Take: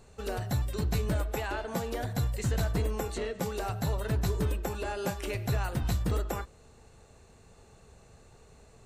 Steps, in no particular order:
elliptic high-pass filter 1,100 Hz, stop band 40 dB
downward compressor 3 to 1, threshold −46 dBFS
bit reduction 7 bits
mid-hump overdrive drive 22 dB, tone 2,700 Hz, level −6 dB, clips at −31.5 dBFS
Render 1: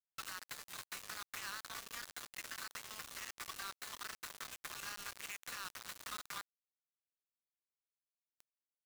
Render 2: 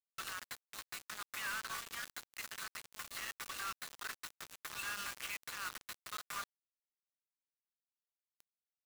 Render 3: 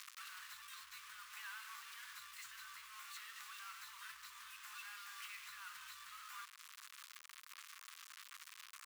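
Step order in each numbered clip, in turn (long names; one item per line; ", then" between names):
elliptic high-pass filter, then mid-hump overdrive, then downward compressor, then bit reduction
downward compressor, then elliptic high-pass filter, then mid-hump overdrive, then bit reduction
mid-hump overdrive, then bit reduction, then downward compressor, then elliptic high-pass filter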